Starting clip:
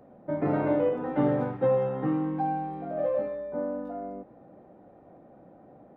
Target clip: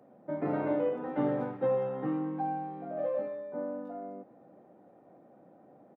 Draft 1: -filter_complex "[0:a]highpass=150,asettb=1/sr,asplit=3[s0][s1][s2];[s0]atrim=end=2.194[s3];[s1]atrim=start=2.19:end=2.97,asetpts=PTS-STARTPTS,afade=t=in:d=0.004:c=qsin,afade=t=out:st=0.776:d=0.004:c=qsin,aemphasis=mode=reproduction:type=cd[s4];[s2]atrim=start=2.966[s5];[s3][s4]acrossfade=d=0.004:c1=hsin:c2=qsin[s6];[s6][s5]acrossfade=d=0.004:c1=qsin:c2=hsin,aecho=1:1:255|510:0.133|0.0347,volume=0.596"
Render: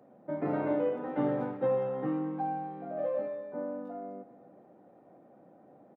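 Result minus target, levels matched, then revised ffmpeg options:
echo-to-direct +10.5 dB
-filter_complex "[0:a]highpass=150,asettb=1/sr,asplit=3[s0][s1][s2];[s0]atrim=end=2.194[s3];[s1]atrim=start=2.19:end=2.97,asetpts=PTS-STARTPTS,afade=t=in:d=0.004:c=qsin,afade=t=out:st=0.776:d=0.004:c=qsin,aemphasis=mode=reproduction:type=cd[s4];[s2]atrim=start=2.966[s5];[s3][s4]acrossfade=d=0.004:c1=hsin:c2=qsin[s6];[s6][s5]acrossfade=d=0.004:c1=qsin:c2=hsin,aecho=1:1:255|510:0.0398|0.0104,volume=0.596"

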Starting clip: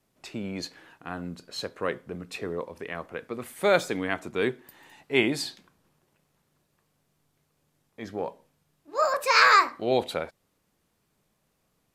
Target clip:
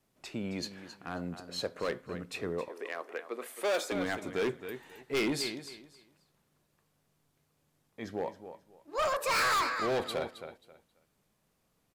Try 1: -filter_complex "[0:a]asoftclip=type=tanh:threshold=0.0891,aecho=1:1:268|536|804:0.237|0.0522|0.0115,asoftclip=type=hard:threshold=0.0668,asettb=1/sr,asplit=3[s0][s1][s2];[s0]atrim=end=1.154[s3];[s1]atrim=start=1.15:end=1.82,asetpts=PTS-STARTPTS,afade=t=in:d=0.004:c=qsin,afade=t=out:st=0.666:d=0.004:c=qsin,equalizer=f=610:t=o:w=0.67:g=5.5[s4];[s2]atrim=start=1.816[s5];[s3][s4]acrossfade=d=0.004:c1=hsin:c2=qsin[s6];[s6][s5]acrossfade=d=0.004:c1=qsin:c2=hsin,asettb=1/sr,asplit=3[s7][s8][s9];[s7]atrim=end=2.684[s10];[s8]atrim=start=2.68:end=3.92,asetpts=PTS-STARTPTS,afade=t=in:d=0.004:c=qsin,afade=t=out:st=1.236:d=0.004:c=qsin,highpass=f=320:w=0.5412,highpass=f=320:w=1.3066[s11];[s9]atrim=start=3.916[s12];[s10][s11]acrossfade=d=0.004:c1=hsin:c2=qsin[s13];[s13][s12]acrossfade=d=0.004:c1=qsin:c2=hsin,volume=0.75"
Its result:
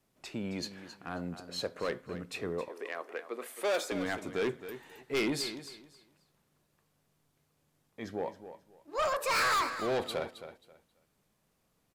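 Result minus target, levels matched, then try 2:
saturation: distortion +10 dB
-filter_complex "[0:a]asoftclip=type=tanh:threshold=0.266,aecho=1:1:268|536|804:0.237|0.0522|0.0115,asoftclip=type=hard:threshold=0.0668,asettb=1/sr,asplit=3[s0][s1][s2];[s0]atrim=end=1.154[s3];[s1]atrim=start=1.15:end=1.82,asetpts=PTS-STARTPTS,afade=t=in:d=0.004:c=qsin,afade=t=out:st=0.666:d=0.004:c=qsin,equalizer=f=610:t=o:w=0.67:g=5.5[s4];[s2]atrim=start=1.816[s5];[s3][s4]acrossfade=d=0.004:c1=hsin:c2=qsin[s6];[s6][s5]acrossfade=d=0.004:c1=qsin:c2=hsin,asettb=1/sr,asplit=3[s7][s8][s9];[s7]atrim=end=2.684[s10];[s8]atrim=start=2.68:end=3.92,asetpts=PTS-STARTPTS,afade=t=in:d=0.004:c=qsin,afade=t=out:st=1.236:d=0.004:c=qsin,highpass=f=320:w=0.5412,highpass=f=320:w=1.3066[s11];[s9]atrim=start=3.916[s12];[s10][s11]acrossfade=d=0.004:c1=hsin:c2=qsin[s13];[s13][s12]acrossfade=d=0.004:c1=qsin:c2=hsin,volume=0.75"

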